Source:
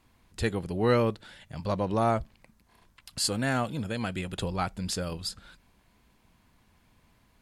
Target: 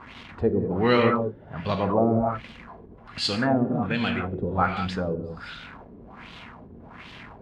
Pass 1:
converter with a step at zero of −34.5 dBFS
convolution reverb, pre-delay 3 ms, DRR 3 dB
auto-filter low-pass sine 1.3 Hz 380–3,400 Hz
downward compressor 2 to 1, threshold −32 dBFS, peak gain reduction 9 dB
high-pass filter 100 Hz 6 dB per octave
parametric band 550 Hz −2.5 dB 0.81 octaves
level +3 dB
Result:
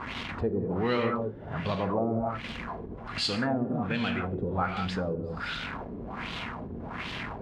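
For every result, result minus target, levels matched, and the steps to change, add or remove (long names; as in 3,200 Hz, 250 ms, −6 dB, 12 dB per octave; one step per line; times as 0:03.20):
downward compressor: peak gain reduction +9 dB; converter with a step at zero: distortion +7 dB
remove: downward compressor 2 to 1, threshold −32 dBFS, peak gain reduction 9 dB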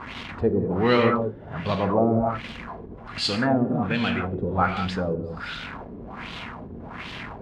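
converter with a step at zero: distortion +7 dB
change: converter with a step at zero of −42.5 dBFS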